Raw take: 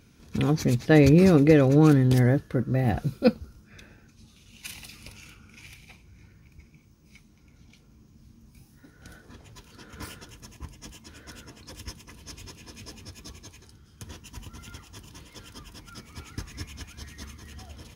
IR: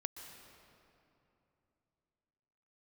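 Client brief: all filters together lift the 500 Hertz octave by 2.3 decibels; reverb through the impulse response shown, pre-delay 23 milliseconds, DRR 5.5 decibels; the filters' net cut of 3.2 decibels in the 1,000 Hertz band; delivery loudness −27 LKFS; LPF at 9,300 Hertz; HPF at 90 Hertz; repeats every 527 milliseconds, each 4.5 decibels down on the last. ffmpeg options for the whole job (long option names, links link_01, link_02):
-filter_complex "[0:a]highpass=90,lowpass=9300,equalizer=frequency=500:width_type=o:gain=4,equalizer=frequency=1000:width_type=o:gain=-7,aecho=1:1:527|1054|1581|2108|2635|3162|3689|4216|4743:0.596|0.357|0.214|0.129|0.0772|0.0463|0.0278|0.0167|0.01,asplit=2[link_01][link_02];[1:a]atrim=start_sample=2205,adelay=23[link_03];[link_02][link_03]afir=irnorm=-1:irlink=0,volume=-4dB[link_04];[link_01][link_04]amix=inputs=2:normalize=0,volume=-8.5dB"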